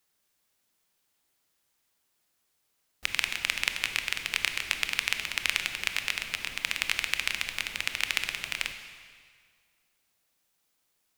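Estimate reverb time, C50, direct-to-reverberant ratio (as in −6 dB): 1.9 s, 8.0 dB, 7.0 dB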